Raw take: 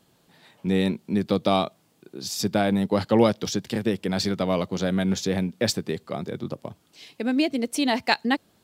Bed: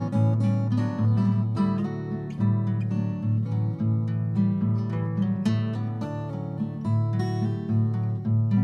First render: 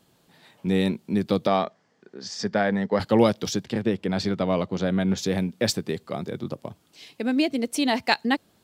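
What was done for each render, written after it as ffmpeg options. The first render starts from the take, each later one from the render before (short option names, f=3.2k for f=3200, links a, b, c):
-filter_complex "[0:a]asettb=1/sr,asplit=3[a][b][c];[a]atrim=end=1.474[d];[b]atrim=start=1.47:end=3,asetpts=PTS-STARTPTS,afade=t=in:d=0.004:c=qsin,afade=t=out:st=1.526:d=0.004:c=qsin,highpass=130,equalizer=f=140:t=q:w=4:g=-9,equalizer=f=320:t=q:w=4:g=-8,equalizer=f=460:t=q:w=4:g=3,equalizer=f=1.8k:t=q:w=4:g=10,equalizer=f=2.6k:t=q:w=4:g=-7,equalizer=f=3.8k:t=q:w=4:g=-8,lowpass=f=5.8k:w=0.5412,lowpass=f=5.8k:w=1.3066[e];[c]atrim=start=2.996[f];[d][e]acrossfade=d=0.004:c1=hsin:c2=qsin[g];[g][f]acrossfade=d=0.004:c1=qsin:c2=hsin,asplit=3[h][i][j];[h]afade=t=out:st=3.63:d=0.02[k];[i]aemphasis=mode=reproduction:type=50fm,afade=t=in:st=3.63:d=0.02,afade=t=out:st=5.17:d=0.02[l];[j]afade=t=in:st=5.17:d=0.02[m];[k][l][m]amix=inputs=3:normalize=0"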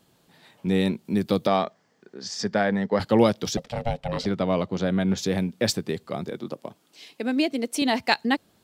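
-filter_complex "[0:a]asettb=1/sr,asplit=3[a][b][c];[a]atrim=end=1.054[d];[b]atrim=start=1.05:end=2.65,asetpts=PTS-STARTPTS,afade=t=in:d=0.004:c=qsin,afade=t=out:st=1.596:d=0.004:c=qsin,highshelf=f=9.9k:g=9[e];[c]atrim=start=2.646[f];[d][e]acrossfade=d=0.004:c1=hsin:c2=qsin[g];[g][f]acrossfade=d=0.004:c1=qsin:c2=hsin,asettb=1/sr,asplit=3[h][i][j];[h]atrim=end=3.574[k];[i]atrim=start=3.57:end=4.26,asetpts=PTS-STARTPTS,afade=t=in:d=0.004:c=qsin,afade=t=out:st=0.686:d=0.004:c=qsin,aeval=exprs='val(0)*sin(2*PI*350*n/s)':c=same[l];[j]atrim=start=4.256[m];[k][l]acrossfade=d=0.004:c1=hsin:c2=qsin[n];[n][m]acrossfade=d=0.004:c1=qsin:c2=hsin,asettb=1/sr,asplit=3[o][p][q];[o]atrim=end=6.294[r];[p]atrim=start=6.29:end=7.82,asetpts=PTS-STARTPTS,afade=t=in:d=0.004:c=qsin,afade=t=out:st=1.526:d=0.004:c=qsin,highpass=210[s];[q]atrim=start=7.816[t];[r][s]acrossfade=d=0.004:c1=hsin:c2=qsin[u];[u][t]acrossfade=d=0.004:c1=qsin:c2=hsin"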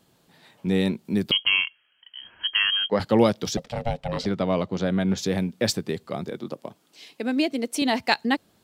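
-filter_complex "[0:a]asettb=1/sr,asplit=3[a][b][c];[a]atrim=end=1.314[d];[b]atrim=start=1.31:end=2.9,asetpts=PTS-STARTPTS,afade=t=in:d=0.004:c=qsin,afade=t=out:st=1.586:d=0.004:c=qsin,lowpass=f=2.9k:t=q:w=0.5098,lowpass=f=2.9k:t=q:w=0.6013,lowpass=f=2.9k:t=q:w=0.9,lowpass=f=2.9k:t=q:w=2.563,afreqshift=-3400[e];[c]atrim=start=2.896[f];[d][e]acrossfade=d=0.004:c1=hsin:c2=qsin[g];[g][f]acrossfade=d=0.004:c1=qsin:c2=hsin"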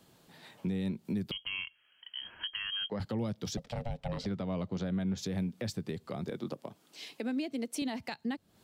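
-filter_complex "[0:a]acrossover=split=190[a][b];[b]acompressor=threshold=-35dB:ratio=3[c];[a][c]amix=inputs=2:normalize=0,alimiter=level_in=2.5dB:limit=-24dB:level=0:latency=1:release=303,volume=-2.5dB"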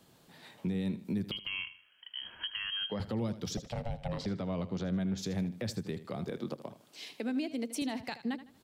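-af "aecho=1:1:78|156|234:0.2|0.0678|0.0231"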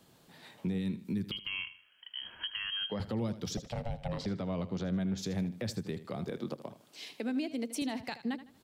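-filter_complex "[0:a]asettb=1/sr,asplit=3[a][b][c];[a]atrim=end=0.784[d];[b]atrim=start=0.78:end=1.47,asetpts=PTS-STARTPTS,afade=t=in:d=0.004:c=qsin,afade=t=out:st=0.686:d=0.004:c=qsin,equalizer=f=660:t=o:w=0.76:g=-11[e];[c]atrim=start=1.466[f];[d][e]acrossfade=d=0.004:c1=hsin:c2=qsin[g];[g][f]acrossfade=d=0.004:c1=qsin:c2=hsin"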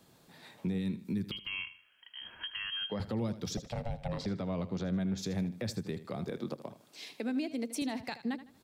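-af "bandreject=f=3k:w=15"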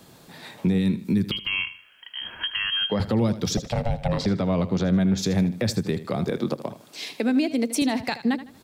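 -af "volume=12dB"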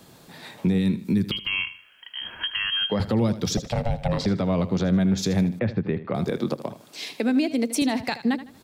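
-filter_complex "[0:a]asettb=1/sr,asplit=3[a][b][c];[a]atrim=end=5.594[d];[b]atrim=start=5.59:end=6.15,asetpts=PTS-STARTPTS,afade=t=in:d=0.004:c=qsin,afade=t=out:st=0.556:d=0.004:c=qsin,lowpass=f=2.6k:w=0.5412,lowpass=f=2.6k:w=1.3066[e];[c]atrim=start=6.146[f];[d][e]acrossfade=d=0.004:c1=hsin:c2=qsin[g];[g][f]acrossfade=d=0.004:c1=qsin:c2=hsin"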